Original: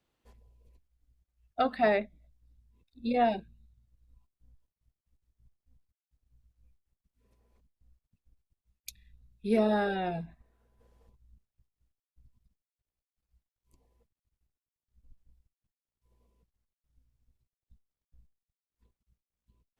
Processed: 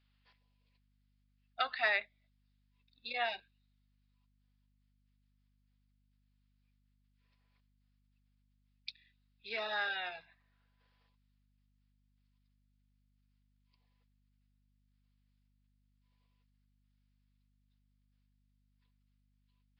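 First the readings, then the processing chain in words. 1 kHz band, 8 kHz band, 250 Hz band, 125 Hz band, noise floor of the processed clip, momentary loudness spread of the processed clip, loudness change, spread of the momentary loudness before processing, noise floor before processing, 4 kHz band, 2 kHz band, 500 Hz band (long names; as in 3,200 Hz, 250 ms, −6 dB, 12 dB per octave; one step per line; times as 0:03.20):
−8.5 dB, below −20 dB, −30.5 dB, −23.5 dB, −75 dBFS, 18 LU, −6.0 dB, 22 LU, below −85 dBFS, +4.5 dB, +3.0 dB, −14.0 dB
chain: flat-topped band-pass 4,000 Hz, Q 0.51
mains hum 50 Hz, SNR 28 dB
downsampling to 11,025 Hz
level +4.5 dB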